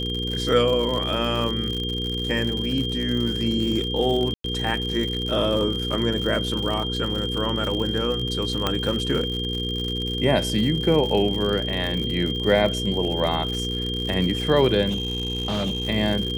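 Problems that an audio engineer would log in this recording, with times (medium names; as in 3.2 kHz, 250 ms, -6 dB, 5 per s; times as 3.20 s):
crackle 94 per s -27 dBFS
hum 60 Hz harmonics 8 -29 dBFS
whine 3.2 kHz -28 dBFS
4.34–4.44 s: dropout 103 ms
8.67 s: pop -8 dBFS
14.89–15.89 s: clipped -21 dBFS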